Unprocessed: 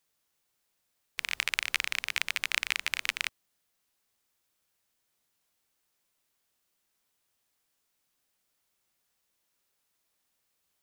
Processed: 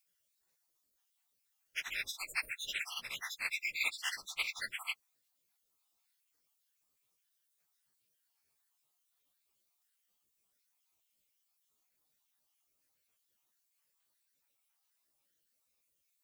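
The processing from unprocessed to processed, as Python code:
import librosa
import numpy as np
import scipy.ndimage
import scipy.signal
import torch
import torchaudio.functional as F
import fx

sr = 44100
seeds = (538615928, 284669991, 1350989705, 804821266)

y = fx.spec_dropout(x, sr, seeds[0], share_pct=62)
y = fx.dmg_noise_colour(y, sr, seeds[1], colour='blue', level_db=-79.0)
y = fx.stretch_vocoder_free(y, sr, factor=1.5)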